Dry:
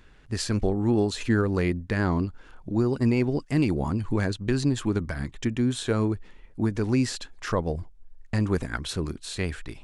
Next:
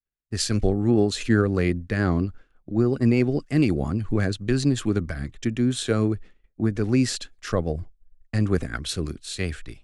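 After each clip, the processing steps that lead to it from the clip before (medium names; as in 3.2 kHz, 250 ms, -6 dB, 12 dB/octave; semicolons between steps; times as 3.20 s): expander -36 dBFS; peaking EQ 940 Hz -14 dB 0.22 oct; three bands expanded up and down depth 40%; trim +2.5 dB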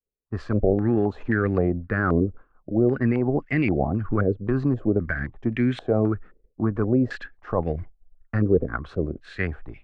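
peak limiter -13.5 dBFS, peak gain reduction 6 dB; step-sequenced low-pass 3.8 Hz 470–2100 Hz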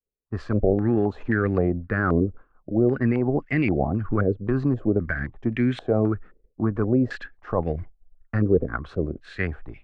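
no audible change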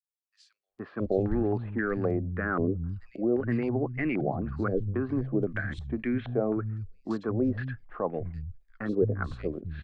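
three bands offset in time highs, mids, lows 470/680 ms, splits 160/3400 Hz; trim -5 dB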